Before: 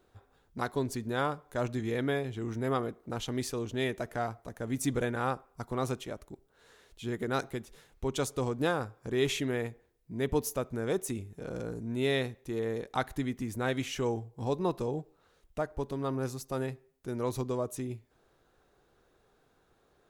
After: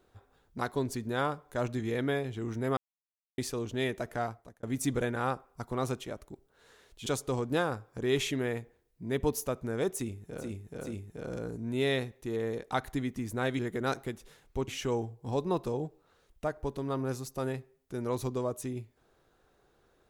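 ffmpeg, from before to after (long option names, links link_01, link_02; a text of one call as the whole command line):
ffmpeg -i in.wav -filter_complex "[0:a]asplit=9[link_01][link_02][link_03][link_04][link_05][link_06][link_07][link_08][link_09];[link_01]atrim=end=2.77,asetpts=PTS-STARTPTS,afade=type=out:start_time=2.766:duration=0.004:curve=hsin[link_10];[link_02]atrim=start=2.77:end=3.38,asetpts=PTS-STARTPTS,volume=0[link_11];[link_03]atrim=start=3.38:end=4.63,asetpts=PTS-STARTPTS,afade=type=in:duration=0.004:curve=hsin,afade=type=out:start_time=0.86:duration=0.39[link_12];[link_04]atrim=start=4.63:end=7.062,asetpts=PTS-STARTPTS,afade=type=in:duration=0.004:curve=hsin[link_13];[link_05]atrim=start=8.148:end=11.62[link_14];[link_06]atrim=start=11.03:end=11.62[link_15];[link_07]atrim=start=11.03:end=13.822[link_16];[link_08]atrim=start=7.058:end=8.152[link_17];[link_09]atrim=start=13.818[link_18];[link_10][link_11][link_12][link_13]concat=n=4:v=0:a=1[link_19];[link_19][link_14]acrossfade=duration=0.004:curve1=hsin:curve2=hsin[link_20];[link_20][link_15]acrossfade=duration=0.16:curve1=tri:curve2=tri[link_21];[link_21][link_16]acrossfade=duration=0.16:curve1=tri:curve2=tri[link_22];[link_22][link_17]acrossfade=duration=0.004:curve1=hsin:curve2=hsin[link_23];[link_23][link_18]acrossfade=duration=0.004:curve1=hsin:curve2=hsin" out.wav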